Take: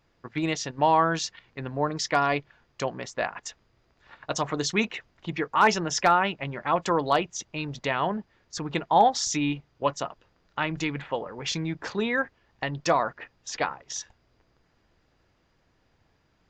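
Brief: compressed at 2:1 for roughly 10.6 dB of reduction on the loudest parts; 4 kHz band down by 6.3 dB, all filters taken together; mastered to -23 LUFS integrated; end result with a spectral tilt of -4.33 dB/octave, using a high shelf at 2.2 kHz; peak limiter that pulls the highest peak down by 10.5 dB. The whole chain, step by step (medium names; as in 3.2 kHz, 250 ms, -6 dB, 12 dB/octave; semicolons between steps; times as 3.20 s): treble shelf 2.2 kHz -4 dB; peaking EQ 4 kHz -4.5 dB; compression 2:1, threshold -35 dBFS; trim +16 dB; peak limiter -11 dBFS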